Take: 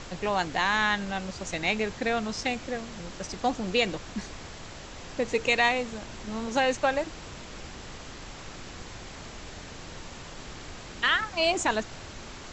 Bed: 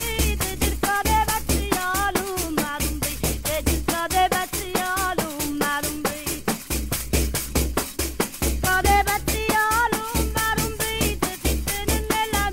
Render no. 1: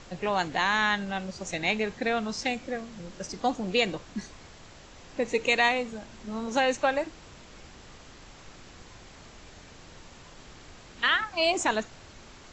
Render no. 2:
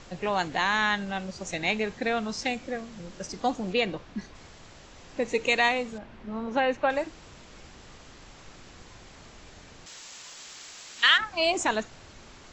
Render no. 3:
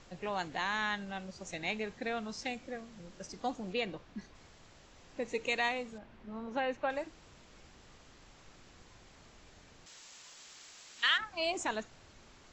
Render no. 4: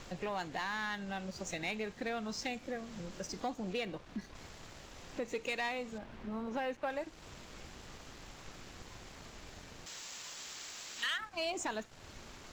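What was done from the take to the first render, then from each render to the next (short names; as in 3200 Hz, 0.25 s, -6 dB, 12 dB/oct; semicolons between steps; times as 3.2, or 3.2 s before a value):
noise print and reduce 7 dB
3.73–4.35 air absorption 120 m; 5.98–6.9 LPF 2600 Hz; 9.86–11.18 tilt +4.5 dB/oct
gain -9 dB
compressor 2:1, threshold -48 dBFS, peak gain reduction 13 dB; sample leveller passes 2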